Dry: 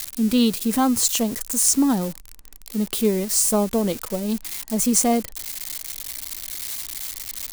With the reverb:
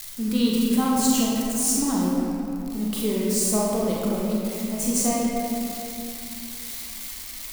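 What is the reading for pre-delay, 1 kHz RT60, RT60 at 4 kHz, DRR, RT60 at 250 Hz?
31 ms, 2.7 s, 1.7 s, -5.0 dB, 3.3 s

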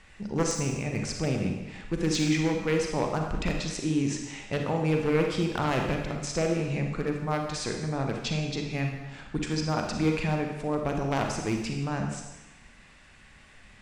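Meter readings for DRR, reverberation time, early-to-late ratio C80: 2.0 dB, 1.1 s, 6.0 dB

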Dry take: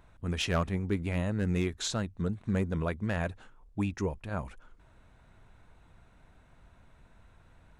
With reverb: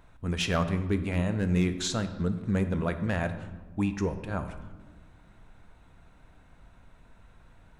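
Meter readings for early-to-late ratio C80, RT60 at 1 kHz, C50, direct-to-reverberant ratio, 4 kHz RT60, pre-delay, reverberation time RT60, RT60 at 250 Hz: 12.5 dB, 1.2 s, 11.0 dB, 8.5 dB, 0.85 s, 4 ms, 1.4 s, 2.3 s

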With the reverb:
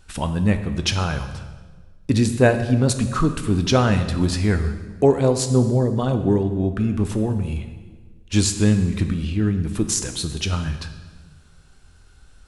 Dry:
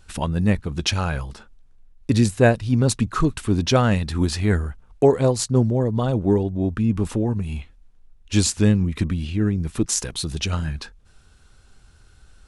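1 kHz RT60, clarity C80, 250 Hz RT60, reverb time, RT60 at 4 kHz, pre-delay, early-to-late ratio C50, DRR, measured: 1.4 s, 11.5 dB, 1.8 s, 1.5 s, 1.2 s, 9 ms, 9.5 dB, 8.0 dB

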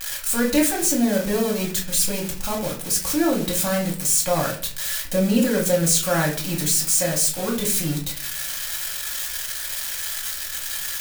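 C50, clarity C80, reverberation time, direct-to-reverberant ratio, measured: 8.5 dB, 13.5 dB, 0.45 s, -2.5 dB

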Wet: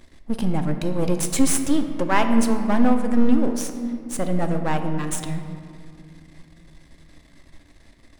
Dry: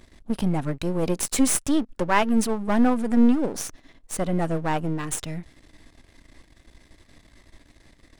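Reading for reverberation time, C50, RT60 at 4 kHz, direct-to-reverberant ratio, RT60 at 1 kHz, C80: 2.4 s, 7.5 dB, 1.3 s, 6.0 dB, 2.2 s, 9.0 dB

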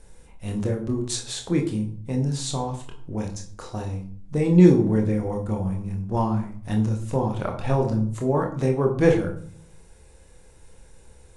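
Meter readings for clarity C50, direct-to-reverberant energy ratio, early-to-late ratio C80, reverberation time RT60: 9.5 dB, 1.5 dB, 13.0 dB, 0.50 s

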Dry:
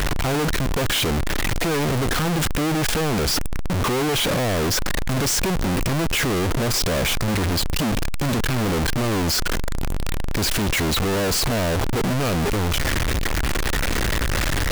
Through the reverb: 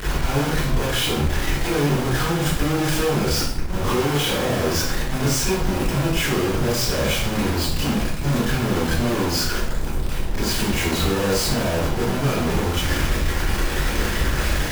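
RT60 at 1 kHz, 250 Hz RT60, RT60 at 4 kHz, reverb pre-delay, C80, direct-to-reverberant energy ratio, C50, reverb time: 0.65 s, 0.90 s, 0.55 s, 25 ms, 4.5 dB, -11.0 dB, -0.5 dB, 0.65 s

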